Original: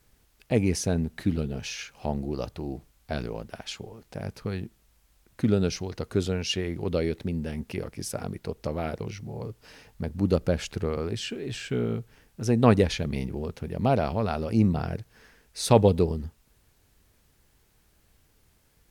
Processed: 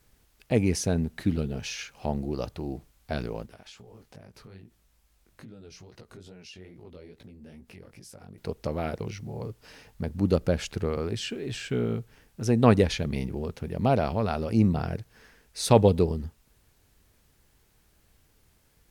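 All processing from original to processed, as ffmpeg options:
ffmpeg -i in.wav -filter_complex "[0:a]asettb=1/sr,asplit=3[link_01][link_02][link_03];[link_01]atrim=end=3.464[link_04];[link_02]atrim=start=3.46:end=8.38,asetpts=PTS-STARTPTS,afade=type=in:duration=0.004:curve=qsin,afade=type=out:start_time=4.916:duration=0.004:curve=qsin,acompressor=threshold=-42dB:ratio=5:attack=3.2:release=140:knee=1:detection=peak,flanger=delay=16:depth=6.5:speed=2.4[link_05];[link_03]atrim=start=8.376[link_06];[link_04][link_05]acrossfade=duration=0.004:curve1=hsin:curve2=qsin[link_07];[link_07][link_06]acrossfade=duration=0.004:curve1=qsin:curve2=hsin" out.wav

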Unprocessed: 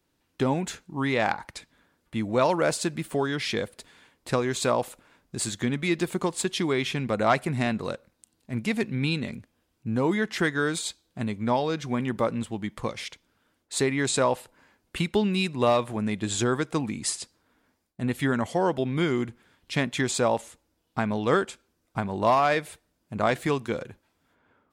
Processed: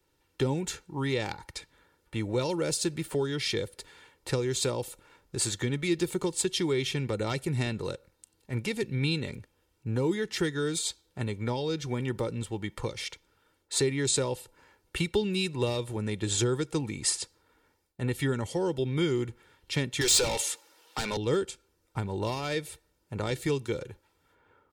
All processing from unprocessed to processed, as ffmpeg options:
ffmpeg -i in.wav -filter_complex "[0:a]asettb=1/sr,asplit=3[link_01][link_02][link_03];[link_01]atrim=end=20.014[link_04];[link_02]atrim=start=20.01:end=21.17,asetpts=PTS-STARTPTS,afade=type=in:duration=0.004:curve=qsin,afade=type=out:start_time=1.156:duration=0.004:curve=qsin,highpass=frequency=680:poles=1,asplit=2[link_05][link_06];[link_06]highpass=frequency=720:poles=1,volume=26dB,asoftclip=type=tanh:threshold=-12.5dB[link_07];[link_05][link_07]amix=inputs=2:normalize=0,lowpass=frequency=5900:poles=1,volume=-6dB[link_08];[link_03]atrim=start=21.166[link_09];[link_04][link_08]acrossfade=duration=0.004:curve1=hsin:curve2=qsin[link_10];[link_10][link_09]acrossfade=duration=0.004:curve1=qsin:curve2=hsin,aecho=1:1:2.2:0.6,acrossover=split=380|3000[link_11][link_12][link_13];[link_12]acompressor=threshold=-38dB:ratio=5[link_14];[link_11][link_14][link_13]amix=inputs=3:normalize=0" out.wav

